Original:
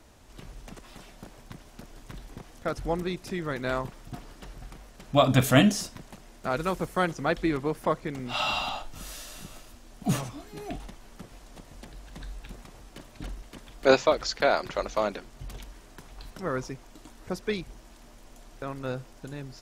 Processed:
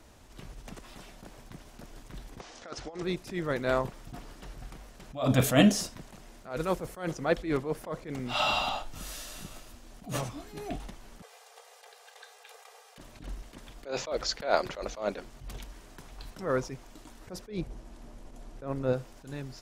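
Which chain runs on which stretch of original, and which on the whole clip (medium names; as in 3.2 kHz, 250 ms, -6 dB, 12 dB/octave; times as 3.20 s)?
2.40–3.03 s: low-pass 6.3 kHz 24 dB/octave + tone controls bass -15 dB, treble +6 dB + compressor with a negative ratio -35 dBFS, ratio -0.5
11.22–12.98 s: brick-wall FIR high-pass 420 Hz + comb 2.5 ms, depth 49%
17.47–18.93 s: brick-wall FIR low-pass 13 kHz + tilt shelf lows +5 dB, about 910 Hz
whole clip: dynamic bell 530 Hz, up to +5 dB, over -39 dBFS, Q 1.6; attacks held to a fixed rise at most 150 dB/s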